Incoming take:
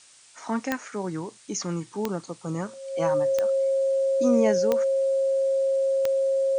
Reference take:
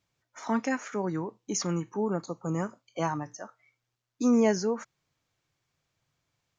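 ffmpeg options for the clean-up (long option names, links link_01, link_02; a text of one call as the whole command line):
ffmpeg -i in.wav -af "adeclick=threshold=4,bandreject=frequency=540:width=30,afftdn=noise_reduction=30:noise_floor=-51" out.wav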